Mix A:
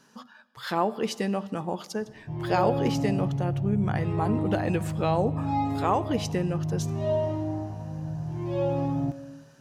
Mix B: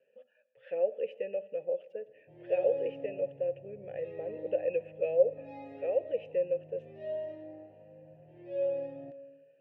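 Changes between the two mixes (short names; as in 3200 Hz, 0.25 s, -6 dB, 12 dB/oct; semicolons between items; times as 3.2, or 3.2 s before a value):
speech: add EQ curve 150 Hz 0 dB, 260 Hz -10 dB, 540 Hz +8 dB, 990 Hz -11 dB, 1900 Hz -9 dB, 2600 Hz +3 dB, 4200 Hz -26 dB, 5900 Hz -27 dB, 11000 Hz -20 dB; master: add vowel filter e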